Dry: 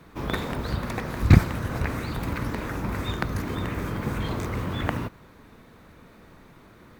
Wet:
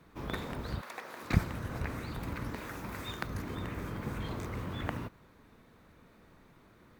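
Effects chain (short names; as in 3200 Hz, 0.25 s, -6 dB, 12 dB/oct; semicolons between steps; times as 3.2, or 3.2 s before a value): 0.8–1.33 HPF 740 Hz -> 360 Hz 12 dB/oct; 2.55–3.27 tilt +1.5 dB/oct; gain -9 dB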